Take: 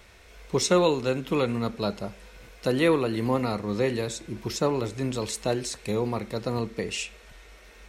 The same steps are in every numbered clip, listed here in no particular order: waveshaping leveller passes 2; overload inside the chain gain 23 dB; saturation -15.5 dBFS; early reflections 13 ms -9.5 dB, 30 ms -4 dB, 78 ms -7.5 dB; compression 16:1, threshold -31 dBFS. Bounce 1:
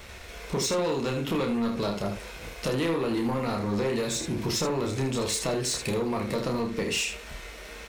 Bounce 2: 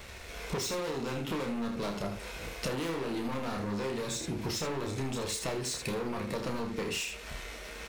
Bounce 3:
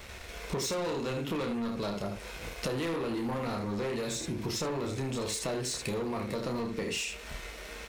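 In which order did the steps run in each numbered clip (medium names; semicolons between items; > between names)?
saturation > compression > overload inside the chain > early reflections > waveshaping leveller; saturation > waveshaping leveller > overload inside the chain > early reflections > compression; early reflections > saturation > waveshaping leveller > compression > overload inside the chain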